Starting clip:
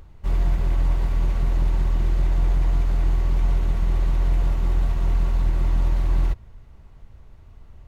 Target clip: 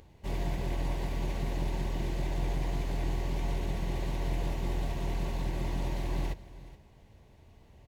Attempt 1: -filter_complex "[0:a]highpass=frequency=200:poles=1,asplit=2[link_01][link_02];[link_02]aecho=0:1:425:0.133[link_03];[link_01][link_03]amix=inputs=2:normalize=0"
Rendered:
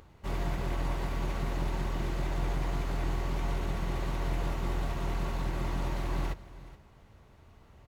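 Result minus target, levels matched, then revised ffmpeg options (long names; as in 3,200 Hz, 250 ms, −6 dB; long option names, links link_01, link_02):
1,000 Hz band +3.0 dB
-filter_complex "[0:a]highpass=frequency=200:poles=1,equalizer=frequency=1300:width_type=o:width=0.46:gain=-13.5,asplit=2[link_01][link_02];[link_02]aecho=0:1:425:0.133[link_03];[link_01][link_03]amix=inputs=2:normalize=0"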